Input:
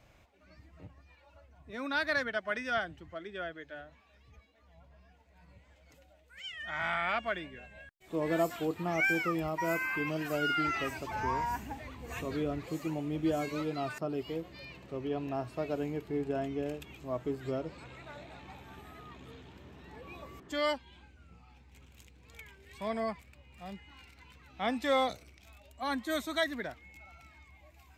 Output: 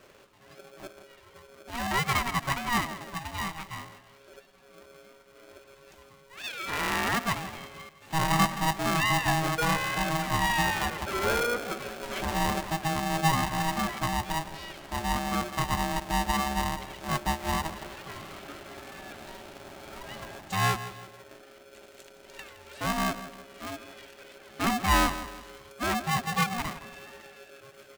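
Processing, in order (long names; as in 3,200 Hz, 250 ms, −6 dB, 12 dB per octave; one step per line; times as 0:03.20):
treble cut that deepens with the level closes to 1,700 Hz, closed at −32 dBFS
repeating echo 166 ms, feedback 40%, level −13.5 dB
ring modulator with a square carrier 480 Hz
level +6 dB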